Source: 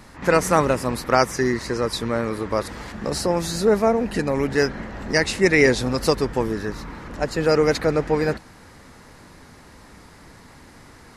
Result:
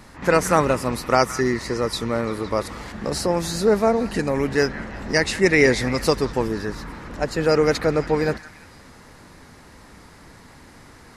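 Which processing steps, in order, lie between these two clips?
0.67–2.86 notch 1600 Hz, Q 12; delay with a stepping band-pass 0.17 s, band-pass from 1600 Hz, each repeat 0.7 oct, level -11.5 dB

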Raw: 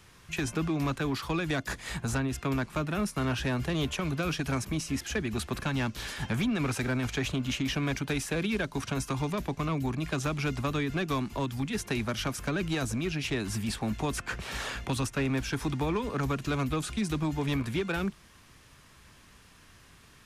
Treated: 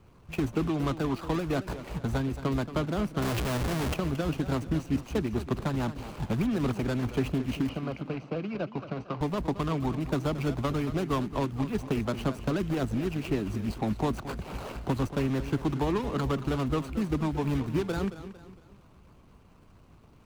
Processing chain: median filter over 25 samples; harmonic-percussive split percussive +5 dB; 3.22–3.94 Schmitt trigger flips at -47 dBFS; 7.69–9.21 speaker cabinet 170–4100 Hz, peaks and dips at 260 Hz -8 dB, 390 Hz -6 dB, 900 Hz -4 dB, 1800 Hz -10 dB, 3500 Hz -10 dB; warbling echo 0.227 s, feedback 40%, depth 110 cents, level -13 dB

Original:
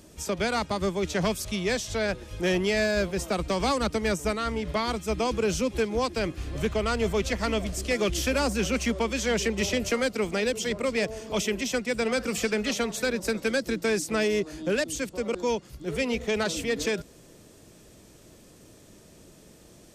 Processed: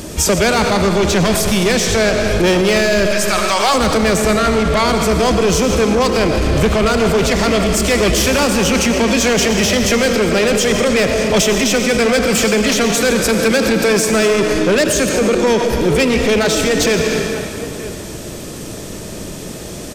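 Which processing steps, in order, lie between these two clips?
3.05–3.73 HPF 1300 Hz -> 590 Hz 24 dB/oct; soft clip -26.5 dBFS, distortion -11 dB; outdoor echo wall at 160 m, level -20 dB; on a send at -5 dB: reverb RT60 2.1 s, pre-delay 45 ms; on the sum: maximiser +29 dB; gain -6 dB

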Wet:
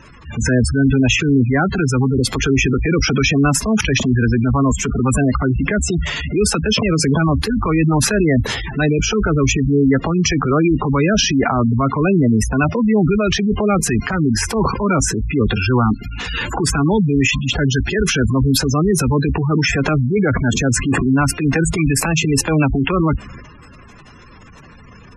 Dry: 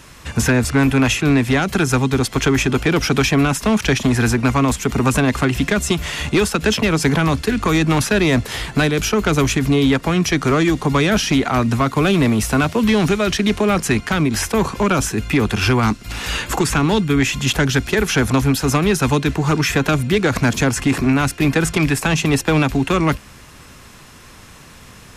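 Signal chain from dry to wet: transient shaper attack -7 dB, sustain +7 dB; spectral gate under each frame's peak -15 dB strong; gain +2 dB

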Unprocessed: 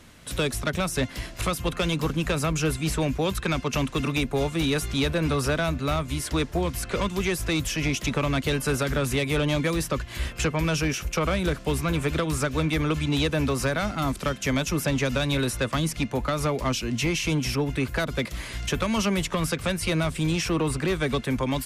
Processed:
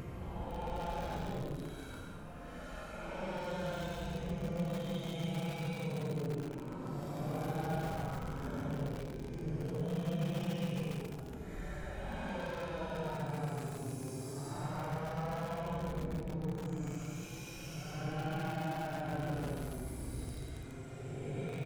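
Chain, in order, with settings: minimum comb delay 1.3 ms; limiter -26.5 dBFS, peak gain reduction 11 dB; EQ curve 110 Hz 0 dB, 190 Hz +4 dB, 350 Hz +10 dB, 3700 Hz -8 dB; tube stage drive 12 dB, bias 0.35; outdoor echo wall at 32 m, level -17 dB; Paulstretch 18×, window 0.05 s, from 1.62; lo-fi delay 0.142 s, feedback 80%, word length 5-bit, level -8 dB; gain -7 dB

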